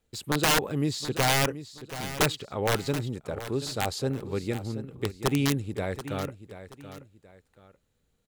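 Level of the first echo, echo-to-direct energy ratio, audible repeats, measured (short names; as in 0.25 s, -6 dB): -13.0 dB, -12.5 dB, 2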